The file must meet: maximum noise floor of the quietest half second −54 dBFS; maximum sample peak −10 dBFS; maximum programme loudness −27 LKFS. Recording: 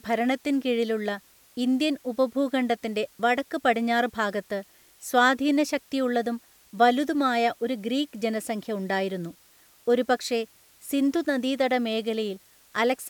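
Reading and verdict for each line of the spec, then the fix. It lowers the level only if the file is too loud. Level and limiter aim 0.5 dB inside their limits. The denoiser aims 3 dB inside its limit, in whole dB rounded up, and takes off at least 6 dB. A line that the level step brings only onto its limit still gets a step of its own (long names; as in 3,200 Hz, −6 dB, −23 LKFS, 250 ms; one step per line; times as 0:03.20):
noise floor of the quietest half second −58 dBFS: in spec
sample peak −7.5 dBFS: out of spec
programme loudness −26.0 LKFS: out of spec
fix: level −1.5 dB
brickwall limiter −10.5 dBFS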